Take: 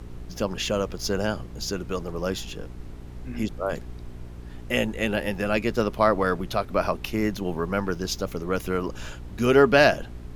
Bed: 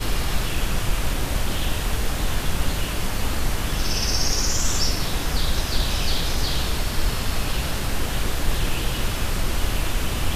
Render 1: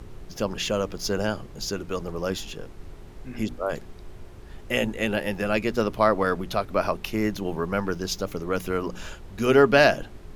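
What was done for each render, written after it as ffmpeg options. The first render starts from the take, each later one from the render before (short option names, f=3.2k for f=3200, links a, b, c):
-af "bandreject=f=60:t=h:w=4,bandreject=f=120:t=h:w=4,bandreject=f=180:t=h:w=4,bandreject=f=240:t=h:w=4,bandreject=f=300:t=h:w=4"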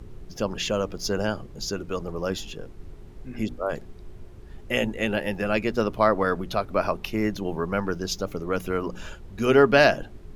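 -af "afftdn=nr=6:nf=-44"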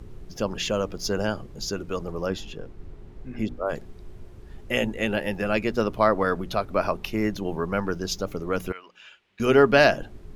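-filter_complex "[0:a]asettb=1/sr,asplit=3[a][b][c];[a]atrim=end=2.264[d];[b]atrim=start=2.26:end=3.68,asetpts=PTS-STARTPTS,afade=t=in:d=0.004:c=qsin,afade=t=out:st=1.416:d=0.004:c=qsin,aemphasis=mode=reproduction:type=cd[e];[c]atrim=start=3.676[f];[d][e]acrossfade=d=0.004:c1=hsin:c2=qsin[g];[g][f]acrossfade=d=0.004:c1=qsin:c2=hsin,asettb=1/sr,asplit=3[h][i][j];[h]atrim=end=8.724[k];[i]atrim=start=8.72:end=9.4,asetpts=PTS-STARTPTS,afade=t=in:d=0.004:c=qsin,afade=t=out:st=0.676:d=0.004:c=qsin,bandpass=f=2.6k:t=q:w=2.2[l];[j]atrim=start=9.396[m];[k][l]acrossfade=d=0.004:c1=hsin:c2=qsin[n];[n][m]acrossfade=d=0.004:c1=qsin:c2=hsin"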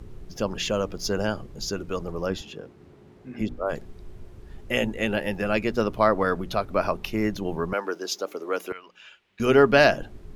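-filter_complex "[0:a]asettb=1/sr,asplit=3[a][b][c];[a]atrim=end=2.414[d];[b]atrim=start=2.41:end=3.41,asetpts=PTS-STARTPTS,afade=t=in:d=0.004:c=qsin,afade=t=out:st=0.996:d=0.004:c=qsin,highpass=140[e];[c]atrim=start=3.406[f];[d][e]acrossfade=d=0.004:c1=hsin:c2=qsin[g];[g][f]acrossfade=d=0.004:c1=qsin:c2=hsin,asettb=1/sr,asplit=3[h][i][j];[h]atrim=end=7.734[k];[i]atrim=start=7.73:end=8.72,asetpts=PTS-STARTPTS,afade=t=in:d=0.004:c=qsin,afade=t=out:st=0.986:d=0.004:c=qsin,highpass=f=310:w=0.5412,highpass=f=310:w=1.3066[l];[j]atrim=start=8.716[m];[k][l]acrossfade=d=0.004:c1=hsin:c2=qsin[n];[n][m]acrossfade=d=0.004:c1=qsin:c2=hsin"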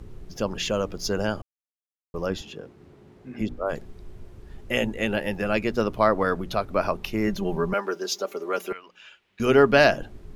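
-filter_complex "[0:a]asettb=1/sr,asplit=3[a][b][c];[a]atrim=end=7.274[d];[b]atrim=start=7.27:end=8.75,asetpts=PTS-STARTPTS,afade=t=in:d=0.004:c=qsin,afade=t=out:st=1.476:d=0.004:c=qsin,aecho=1:1:5.1:0.63,atrim=end_sample=65268[e];[c]atrim=start=8.746[f];[d][e]acrossfade=d=0.004:c1=hsin:c2=qsin[g];[g][f]acrossfade=d=0.004:c1=qsin:c2=hsin,asplit=3[h][i][j];[h]atrim=end=1.42,asetpts=PTS-STARTPTS,afade=t=out:st=1.416:d=0.004:c=hsin[k];[i]atrim=start=1.42:end=2.14,asetpts=PTS-STARTPTS,volume=0[l];[j]atrim=start=2.14,asetpts=PTS-STARTPTS,afade=t=in:d=0.004:c=hsin[m];[k][l][m]concat=n=3:v=0:a=1"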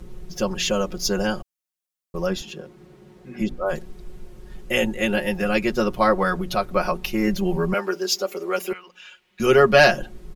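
-af "highshelf=f=4.9k:g=6.5,aecho=1:1:5.5:0.91"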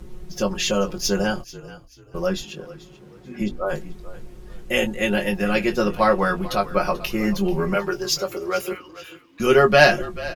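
-filter_complex "[0:a]asplit=2[a][b];[b]adelay=20,volume=-8dB[c];[a][c]amix=inputs=2:normalize=0,asplit=4[d][e][f][g];[e]adelay=437,afreqshift=-36,volume=-17.5dB[h];[f]adelay=874,afreqshift=-72,volume=-28dB[i];[g]adelay=1311,afreqshift=-108,volume=-38.4dB[j];[d][h][i][j]amix=inputs=4:normalize=0"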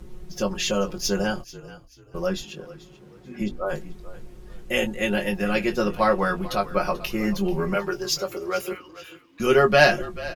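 -af "volume=-2.5dB"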